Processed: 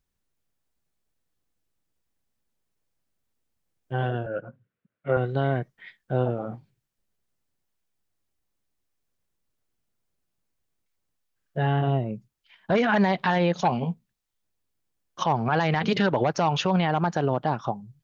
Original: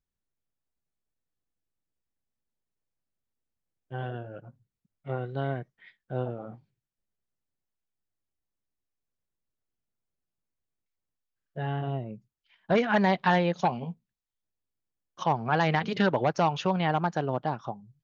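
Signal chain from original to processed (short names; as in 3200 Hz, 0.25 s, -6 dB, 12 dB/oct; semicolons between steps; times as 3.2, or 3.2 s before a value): limiter -20.5 dBFS, peak gain reduction 10.5 dB; 4.26–5.17 speaker cabinet 150–2900 Hz, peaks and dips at 520 Hz +7 dB, 840 Hz -6 dB, 1500 Hz +8 dB; gain +8 dB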